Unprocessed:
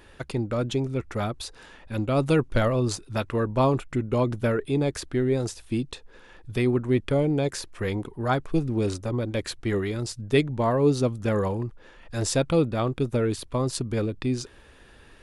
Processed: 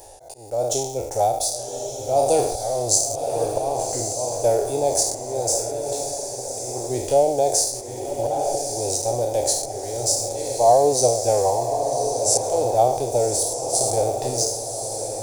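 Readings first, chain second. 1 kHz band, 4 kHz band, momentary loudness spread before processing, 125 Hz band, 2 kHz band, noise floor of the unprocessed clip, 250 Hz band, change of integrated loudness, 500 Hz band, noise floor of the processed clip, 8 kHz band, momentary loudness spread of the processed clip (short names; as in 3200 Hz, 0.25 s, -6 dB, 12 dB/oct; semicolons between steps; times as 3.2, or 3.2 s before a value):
+10.0 dB, +7.0 dB, 9 LU, -7.0 dB, under -10 dB, -52 dBFS, -8.5 dB, +4.5 dB, +6.0 dB, -33 dBFS, +18.0 dB, 8 LU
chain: spectral trails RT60 0.71 s; in parallel at -10.5 dB: sample gate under -32.5 dBFS; on the sum: auto swell 0.392 s; EQ curve 120 Hz 0 dB, 180 Hz -17 dB, 780 Hz +15 dB, 1200 Hz -18 dB, 3200 Hz -11 dB, 6000 Hz +13 dB; diffused feedback echo 1.142 s, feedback 43%, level -6 dB; reverse; upward compressor, threshold -33 dBFS; reverse; low shelf 310 Hz -7.5 dB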